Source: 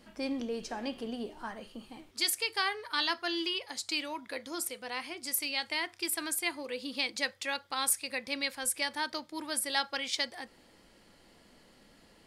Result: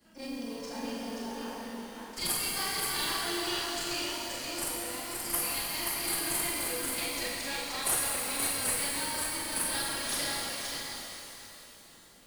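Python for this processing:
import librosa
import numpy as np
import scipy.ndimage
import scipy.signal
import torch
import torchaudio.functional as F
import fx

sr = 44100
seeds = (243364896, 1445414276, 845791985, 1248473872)

p1 = fx.frame_reverse(x, sr, frame_ms=93.0)
p2 = fx.high_shelf(p1, sr, hz=4700.0, db=11.0)
p3 = fx.cheby_harmonics(p2, sr, harmonics=(8,), levels_db=(-23,), full_scale_db=-15.5)
p4 = fx.sample_hold(p3, sr, seeds[0], rate_hz=4300.0, jitter_pct=0)
p5 = p3 + (p4 * librosa.db_to_amplitude(-9.0))
p6 = fx.mod_noise(p5, sr, seeds[1], snr_db=20)
p7 = p6 + fx.echo_single(p6, sr, ms=529, db=-4.0, dry=0)
p8 = fx.rev_shimmer(p7, sr, seeds[2], rt60_s=3.2, semitones=12, shimmer_db=-8, drr_db=-3.0)
y = p8 * librosa.db_to_amplitude(-7.5)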